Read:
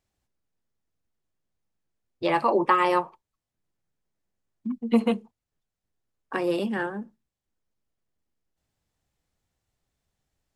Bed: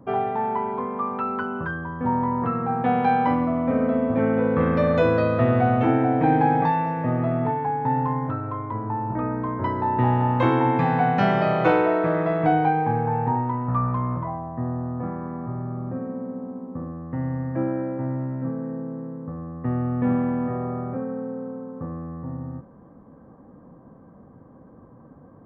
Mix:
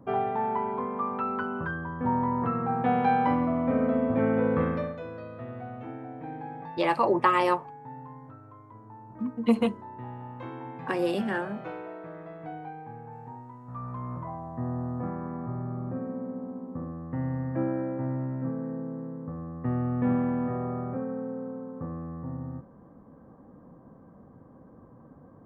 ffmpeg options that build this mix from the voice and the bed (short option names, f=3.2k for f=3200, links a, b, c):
-filter_complex "[0:a]adelay=4550,volume=-1.5dB[a];[1:a]volume=13dB,afade=t=out:st=4.53:d=0.43:silence=0.149624,afade=t=in:st=13.63:d=1.17:silence=0.149624[b];[a][b]amix=inputs=2:normalize=0"